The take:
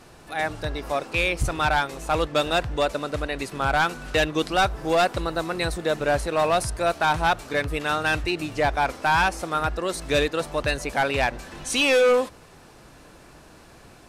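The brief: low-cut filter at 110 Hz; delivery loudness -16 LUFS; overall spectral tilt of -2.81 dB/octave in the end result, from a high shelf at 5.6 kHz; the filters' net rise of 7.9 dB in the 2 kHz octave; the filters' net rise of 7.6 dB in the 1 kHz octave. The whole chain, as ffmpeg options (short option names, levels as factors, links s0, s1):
-af "highpass=110,equalizer=f=1000:t=o:g=8.5,equalizer=f=2000:t=o:g=7,highshelf=f=5600:g=5,volume=1.26"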